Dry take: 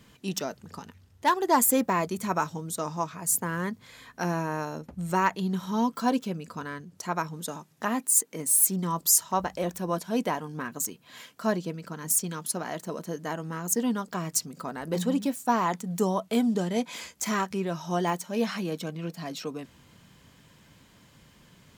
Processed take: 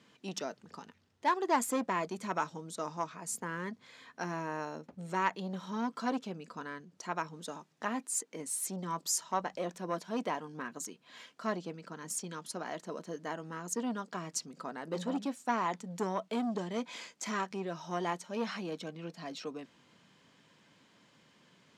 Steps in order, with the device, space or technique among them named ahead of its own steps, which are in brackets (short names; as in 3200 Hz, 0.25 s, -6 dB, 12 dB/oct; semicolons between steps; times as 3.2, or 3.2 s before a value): public-address speaker with an overloaded transformer (core saturation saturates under 1000 Hz; BPF 210–6200 Hz); gain -5 dB